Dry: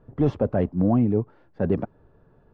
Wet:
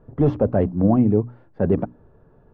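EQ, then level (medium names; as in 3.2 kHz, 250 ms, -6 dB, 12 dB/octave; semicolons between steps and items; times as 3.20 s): treble shelf 2.4 kHz -10.5 dB; hum notches 60/120/180/240/300 Hz; +4.5 dB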